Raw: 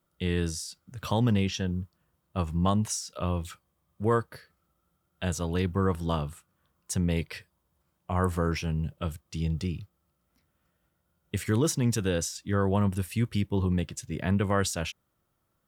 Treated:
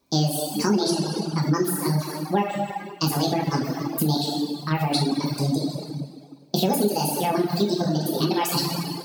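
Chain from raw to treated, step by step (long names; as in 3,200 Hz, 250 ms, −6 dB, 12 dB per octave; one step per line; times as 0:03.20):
dense smooth reverb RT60 3.8 s, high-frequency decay 0.8×, DRR −4.5 dB
wrong playback speed 45 rpm record played at 78 rpm
downward compressor 3 to 1, threshold −25 dBFS, peak gain reduction 9 dB
parametric band 2,000 Hz −11.5 dB 0.78 octaves
reverb reduction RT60 1.4 s
parametric band 4,300 Hz +12.5 dB 0.41 octaves
level +7 dB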